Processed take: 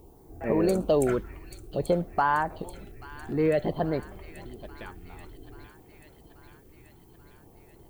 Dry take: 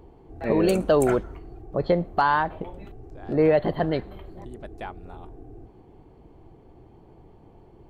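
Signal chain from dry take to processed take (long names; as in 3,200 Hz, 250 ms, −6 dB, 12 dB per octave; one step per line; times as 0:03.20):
auto-filter notch sine 0.54 Hz 550–4,000 Hz
background noise violet −63 dBFS
delay with a high-pass on its return 834 ms, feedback 65%, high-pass 2,200 Hz, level −9 dB
level −3 dB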